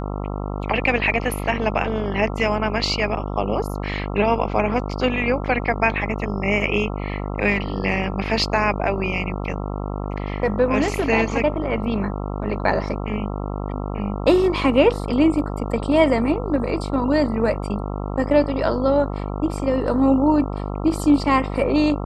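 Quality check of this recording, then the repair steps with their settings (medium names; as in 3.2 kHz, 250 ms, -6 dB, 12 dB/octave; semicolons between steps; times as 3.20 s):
buzz 50 Hz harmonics 27 -27 dBFS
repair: de-hum 50 Hz, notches 27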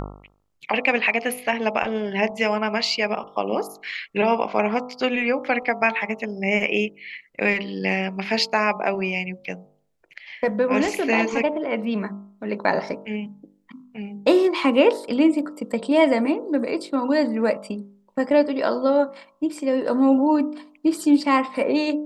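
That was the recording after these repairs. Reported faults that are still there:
nothing left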